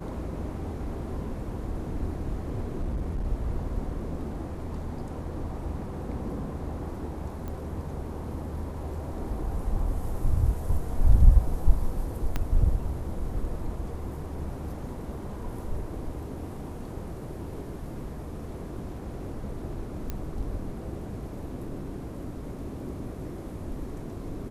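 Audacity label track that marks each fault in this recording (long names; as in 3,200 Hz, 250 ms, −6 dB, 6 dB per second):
2.820000	3.260000	clipping −26 dBFS
7.480000	7.480000	click −25 dBFS
12.360000	12.360000	click −14 dBFS
20.100000	20.100000	click −18 dBFS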